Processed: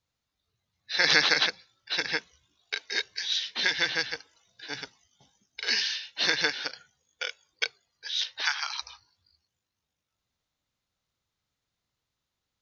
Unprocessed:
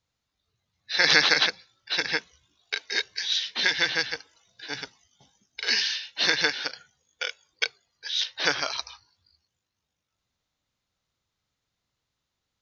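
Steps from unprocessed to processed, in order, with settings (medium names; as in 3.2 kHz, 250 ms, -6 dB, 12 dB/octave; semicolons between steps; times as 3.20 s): 8.41–8.82 s: elliptic high-pass 820 Hz, stop band 40 dB; trim -2.5 dB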